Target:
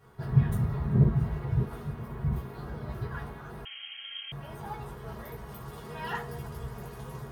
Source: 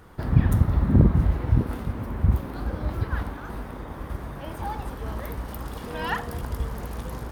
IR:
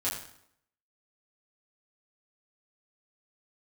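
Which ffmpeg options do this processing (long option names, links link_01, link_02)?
-filter_complex "[1:a]atrim=start_sample=2205,atrim=end_sample=3087,asetrate=66150,aresample=44100[link_01];[0:a][link_01]afir=irnorm=-1:irlink=0,asettb=1/sr,asplit=3[link_02][link_03][link_04];[link_02]atrim=end=3.654[link_05];[link_03]atrim=start=3.65:end=4.32,asetpts=PTS-STARTPTS,afade=type=in:duration=0.004:curve=qsin,afade=type=out:start_time=0.666:duration=0.004:curve=qsin,lowpass=frequency=2800:width_type=q:width=0.5098,lowpass=frequency=2800:width_type=q:width=0.6013,lowpass=frequency=2800:width_type=q:width=0.9,lowpass=frequency=2800:width_type=q:width=2.563,afreqshift=-3300[link_06];[link_04]atrim=start=4.316[link_07];[link_05][link_06]acrossfade=duration=0.004:curve1=hsin:curve2=qsin[link_08];[link_08][link_07]acrossfade=duration=0.004:curve1=qsin:curve2=hsin,volume=-8dB"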